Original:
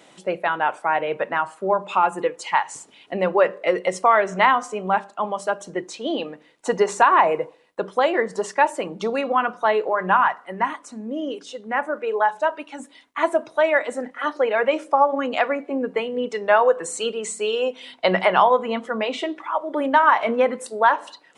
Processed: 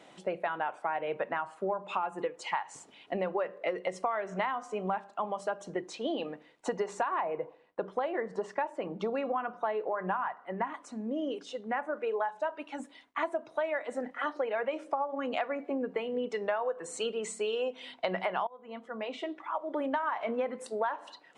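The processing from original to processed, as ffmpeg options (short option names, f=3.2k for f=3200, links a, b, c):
-filter_complex "[0:a]asettb=1/sr,asplit=3[a][b][c];[a]atrim=end=7.234[d];[b]atrim=start=7.23:end=10.74,asetpts=PTS-STARTPTS,afade=t=in:d=0.004:c=qsin,afade=t=out:st=3.506:d=0.004:c=qsin,highshelf=f=3.8k:g=-11.5[e];[c]atrim=start=10.736[f];[d][e]acrossfade=d=0.004:c1=hsin:c2=qsin[g];[g][f]acrossfade=d=0.004:c1=qsin:c2=hsin,asplit=2[h][i];[h]atrim=end=18.47,asetpts=PTS-STARTPTS,afade=t=out:st=18.466:d=0.004:c=hsin:silence=0.0668344[j];[i]atrim=start=18.47,asetpts=PTS-STARTPTS,afade=t=in:d=1.81:silence=0.0668344[k];[j][k]concat=n=2:v=0:a=1,lowpass=f=3.9k:p=1,equalizer=f=720:t=o:w=0.32:g=3,acompressor=threshold=-25dB:ratio=6,volume=-4dB"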